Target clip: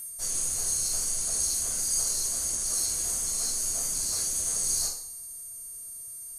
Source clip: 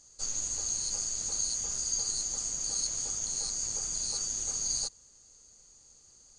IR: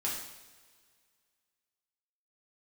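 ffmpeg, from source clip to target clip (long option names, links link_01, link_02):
-filter_complex "[0:a]aeval=exprs='val(0)+0.0141*sin(2*PI*8700*n/s)':channel_layout=same,asplit=3[link_01][link_02][link_03];[link_02]asetrate=55563,aresample=44100,atempo=0.793701,volume=-2dB[link_04];[link_03]asetrate=66075,aresample=44100,atempo=0.66742,volume=-1dB[link_05];[link_01][link_04][link_05]amix=inputs=3:normalize=0[link_06];[1:a]atrim=start_sample=2205,asetrate=74970,aresample=44100[link_07];[link_06][link_07]afir=irnorm=-1:irlink=0,volume=1.5dB"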